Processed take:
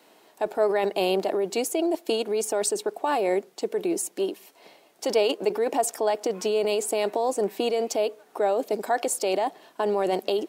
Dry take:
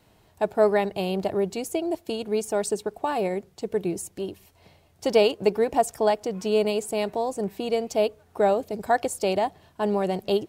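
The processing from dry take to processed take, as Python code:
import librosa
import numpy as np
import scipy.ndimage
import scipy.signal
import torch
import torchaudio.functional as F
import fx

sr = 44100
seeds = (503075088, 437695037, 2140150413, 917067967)

p1 = scipy.signal.sosfilt(scipy.signal.butter(4, 270.0, 'highpass', fs=sr, output='sos'), x)
p2 = fx.over_compress(p1, sr, threshold_db=-28.0, ratio=-0.5)
p3 = p1 + (p2 * librosa.db_to_amplitude(1.0))
y = p3 * librosa.db_to_amplitude(-3.5)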